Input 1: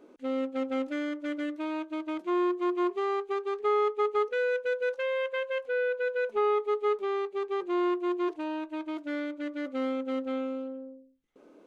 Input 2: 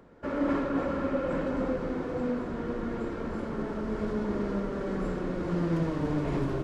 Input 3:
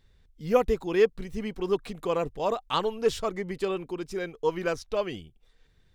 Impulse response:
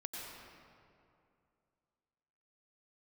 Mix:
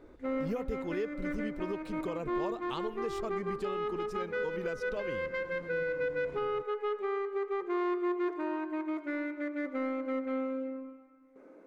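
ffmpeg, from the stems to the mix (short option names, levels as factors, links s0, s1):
-filter_complex "[0:a]highshelf=f=2500:t=q:w=3:g=-6,asoftclip=type=tanh:threshold=0.0891,volume=0.668,asplit=2[s0][s1];[s1]volume=0.501[s2];[1:a]volume=0.133[s3];[2:a]lowshelf=f=370:g=7,volume=0.473[s4];[3:a]atrim=start_sample=2205[s5];[s2][s5]afir=irnorm=-1:irlink=0[s6];[s0][s3][s4][s6]amix=inputs=4:normalize=0,alimiter=level_in=1.19:limit=0.0631:level=0:latency=1:release=291,volume=0.841"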